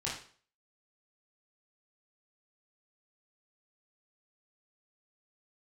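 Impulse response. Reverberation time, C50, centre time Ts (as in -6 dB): 0.45 s, 4.5 dB, 40 ms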